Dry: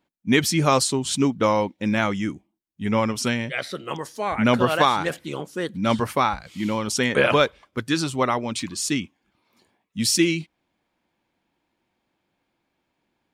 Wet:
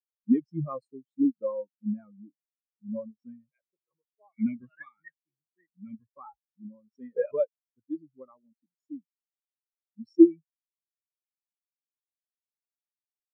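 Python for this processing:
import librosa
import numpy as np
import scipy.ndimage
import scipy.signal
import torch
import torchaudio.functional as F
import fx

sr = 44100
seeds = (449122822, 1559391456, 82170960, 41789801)

y = fx.graphic_eq(x, sr, hz=(500, 1000, 2000, 4000, 8000), db=(-7, -9, 12, -6, 11), at=(4.32, 6.09))
y = fx.spectral_expand(y, sr, expansion=4.0)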